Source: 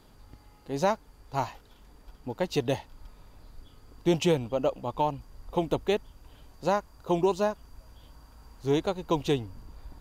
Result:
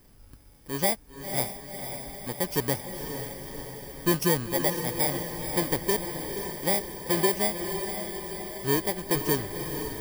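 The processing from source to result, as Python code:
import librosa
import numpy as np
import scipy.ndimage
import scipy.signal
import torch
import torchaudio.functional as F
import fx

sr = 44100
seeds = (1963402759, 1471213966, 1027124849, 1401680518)

y = fx.bit_reversed(x, sr, seeds[0], block=32)
y = fx.echo_diffused(y, sr, ms=516, feedback_pct=64, wet_db=-7.0)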